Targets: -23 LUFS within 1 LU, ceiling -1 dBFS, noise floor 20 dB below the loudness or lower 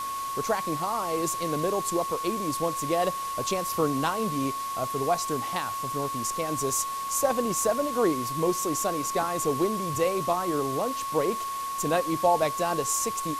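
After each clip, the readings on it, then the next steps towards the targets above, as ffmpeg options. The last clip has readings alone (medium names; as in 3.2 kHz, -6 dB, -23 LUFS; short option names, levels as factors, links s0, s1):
steady tone 1.1 kHz; tone level -30 dBFS; noise floor -33 dBFS; noise floor target -48 dBFS; loudness -27.5 LUFS; peak level -10.5 dBFS; loudness target -23.0 LUFS
-> -af "bandreject=f=1100:w=30"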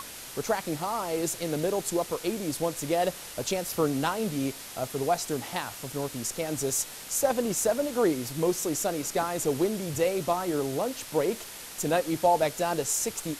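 steady tone not found; noise floor -43 dBFS; noise floor target -49 dBFS
-> -af "afftdn=nr=6:nf=-43"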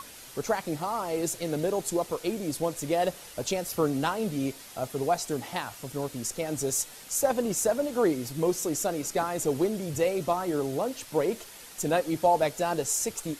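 noise floor -47 dBFS; noise floor target -49 dBFS
-> -af "afftdn=nr=6:nf=-47"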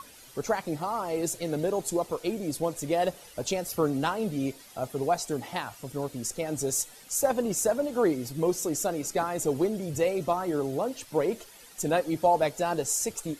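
noise floor -51 dBFS; loudness -29.0 LUFS; peak level -12.0 dBFS; loudness target -23.0 LUFS
-> -af "volume=2"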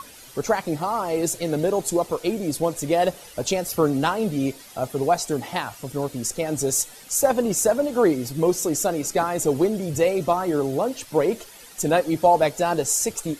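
loudness -23.0 LUFS; peak level -6.0 dBFS; noise floor -45 dBFS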